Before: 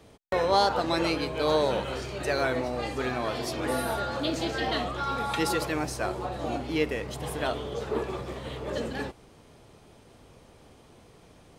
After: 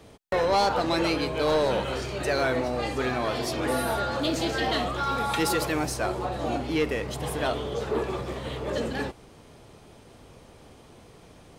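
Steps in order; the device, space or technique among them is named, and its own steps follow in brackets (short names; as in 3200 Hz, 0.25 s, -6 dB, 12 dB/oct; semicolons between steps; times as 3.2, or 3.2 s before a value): saturation between pre-emphasis and de-emphasis (high shelf 6400 Hz +11 dB; soft clip -20 dBFS, distortion -15 dB; high shelf 6400 Hz -11 dB); 4.22–5.94 high shelf 10000 Hz +6 dB; gain +3.5 dB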